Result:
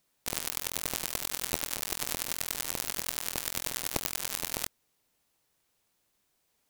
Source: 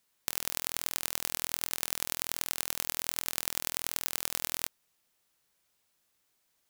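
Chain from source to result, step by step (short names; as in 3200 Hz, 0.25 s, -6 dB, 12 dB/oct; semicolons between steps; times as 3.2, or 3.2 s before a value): harmoniser -12 st -10 dB, -3 st -10 dB, +3 st -5 dB; in parallel at -11 dB: sample-and-hold 25×; on the sum: gain -2 dB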